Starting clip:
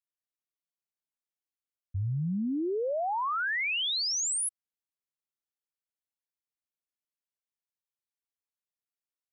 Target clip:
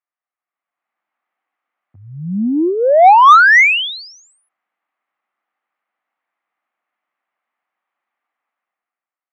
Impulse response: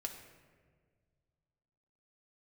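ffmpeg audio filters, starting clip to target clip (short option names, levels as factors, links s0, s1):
-af "dynaudnorm=f=140:g=11:m=5.31,highpass=f=240:w=0.5412,highpass=f=240:w=1.3066,equalizer=f=270:t=q:w=4:g=-4,equalizer=f=420:t=q:w=4:g=-9,equalizer=f=760:t=q:w=4:g=8,equalizer=f=1200:t=q:w=4:g=9,equalizer=f=2000:t=q:w=4:g=5,lowpass=f=2400:w=0.5412,lowpass=f=2400:w=1.3066,acontrast=37"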